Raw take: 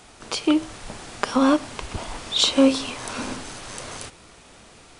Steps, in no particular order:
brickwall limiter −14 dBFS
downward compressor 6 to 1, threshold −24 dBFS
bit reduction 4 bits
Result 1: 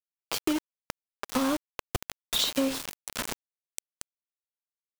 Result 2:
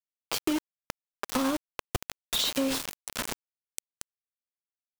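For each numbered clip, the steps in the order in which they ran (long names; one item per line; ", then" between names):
bit reduction, then downward compressor, then brickwall limiter
bit reduction, then brickwall limiter, then downward compressor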